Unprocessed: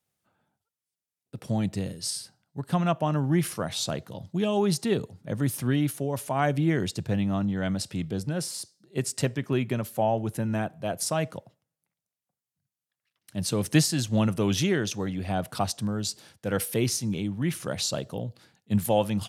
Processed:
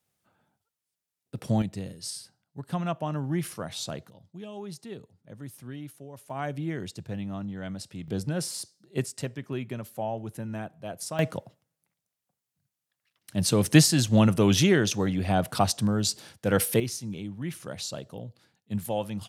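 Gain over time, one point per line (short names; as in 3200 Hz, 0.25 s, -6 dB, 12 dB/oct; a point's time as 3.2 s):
+2.5 dB
from 1.62 s -5 dB
from 4.1 s -15 dB
from 6.3 s -8 dB
from 8.08 s 0 dB
from 9.06 s -7 dB
from 11.19 s +4 dB
from 16.8 s -6.5 dB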